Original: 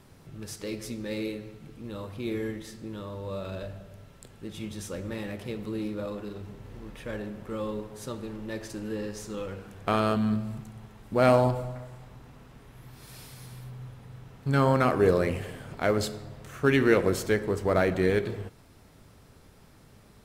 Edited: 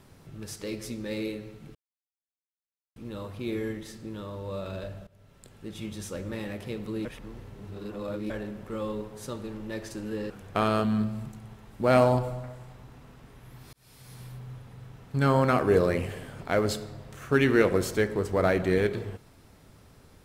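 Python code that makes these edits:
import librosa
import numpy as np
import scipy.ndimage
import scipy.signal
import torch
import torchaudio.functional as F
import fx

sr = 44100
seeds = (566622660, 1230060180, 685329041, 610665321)

y = fx.edit(x, sr, fx.insert_silence(at_s=1.75, length_s=1.21),
    fx.fade_in_from(start_s=3.86, length_s=0.76, curve='qsin', floor_db=-17.5),
    fx.reverse_span(start_s=5.84, length_s=1.25),
    fx.cut(start_s=9.09, length_s=0.53),
    fx.fade_in_span(start_s=13.05, length_s=0.49), tone=tone)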